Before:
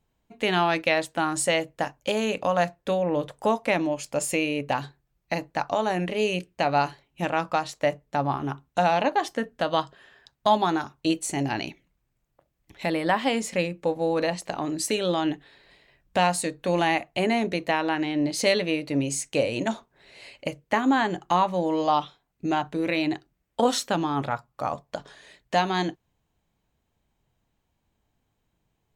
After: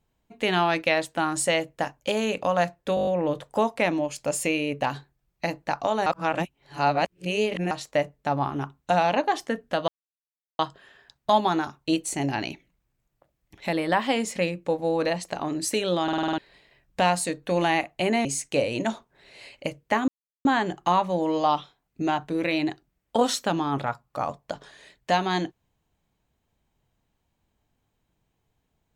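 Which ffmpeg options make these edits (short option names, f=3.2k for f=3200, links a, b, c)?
-filter_complex "[0:a]asplit=19[a][b][c][d][e][f][g][h][i][j][k][l][m][n][o][p][q][r][s];[a]atrim=end=2.972[t];[b]atrim=start=2.948:end=2.972[u];[c]atrim=start=2.948:end=2.972[v];[d]atrim=start=2.948:end=2.972[w];[e]atrim=start=2.948:end=2.972[x];[f]atrim=start=2.948:end=2.972[y];[g]atrim=start=2.948:end=5.942[z];[h]atrim=start=5.938:end=7.592,asetpts=PTS-STARTPTS,areverse[aa];[i]atrim=start=7.588:end=9.76,asetpts=PTS-STARTPTS,afade=t=out:st=2.168:d=0.004:c=hsin,apad=pad_dur=0.71[ab];[j]atrim=start=9.76:end=15.252,asetpts=PTS-STARTPTS,afade=t=in:d=0.004:c=hsin[ac];[k]atrim=start=15.198:end=15.252[ad];[l]atrim=start=15.198:end=15.252[ae];[m]atrim=start=15.198:end=15.252[af];[n]atrim=start=15.198:end=15.252[ag];[o]atrim=start=15.198:end=15.252[ah];[p]atrim=start=15.198:end=15.252[ai];[q]atrim=start=15.548:end=17.422[aj];[r]atrim=start=19.058:end=20.89,asetpts=PTS-STARTPTS,afade=t=out:st=1.828:d=0.004:c=hsin,apad=pad_dur=0.37[ak];[s]atrim=start=20.89,asetpts=PTS-STARTPTS,afade=t=in:d=0.004:c=hsin[al];[t][u]acrossfade=d=0.004:c1=hsin:c2=hsin[am];[am][v]acrossfade=d=0.004:c1=hsin:c2=hsin[an];[an][w]acrossfade=d=0.004:c1=hsin:c2=hsin[ao];[ao][x]acrossfade=d=0.004:c1=hsin:c2=hsin[ap];[ap][y]acrossfade=d=0.004:c1=hsin:c2=hsin[aq];[aq][z]acrossfade=d=0.004:c1=hsin:c2=hsin[ar];[ar][aa]acrossfade=d=0.004:c1=hsin:c2=hsin[as];[ab][ac]concat=n=2:v=0:a=1[at];[as][at]acrossfade=d=0.004:c1=hsin:c2=hsin[au];[au][ad]acrossfade=d=0.004:c1=hsin:c2=hsin[av];[av][ae]acrossfade=d=0.004:c1=hsin:c2=hsin[aw];[aw][af]acrossfade=d=0.004:c1=hsin:c2=hsin[ax];[ax][ag]acrossfade=d=0.004:c1=hsin:c2=hsin[ay];[ay][ah]acrossfade=d=0.004:c1=hsin:c2=hsin[az];[az][ai]acrossfade=d=0.004:c1=hsin:c2=hsin[ba];[ba][aj]acrossfade=d=0.004:c1=hsin:c2=hsin[bb];[ak][al]concat=n=2:v=0:a=1[bc];[bb][bc]acrossfade=d=0.004:c1=hsin:c2=hsin"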